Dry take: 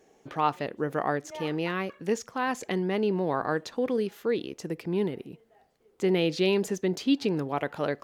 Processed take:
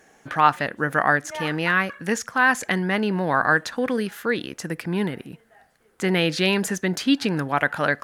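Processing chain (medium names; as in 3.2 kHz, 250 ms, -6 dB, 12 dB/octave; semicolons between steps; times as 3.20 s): fifteen-band graphic EQ 400 Hz -8 dB, 1.6 kHz +11 dB, 10 kHz +8 dB; trim +6.5 dB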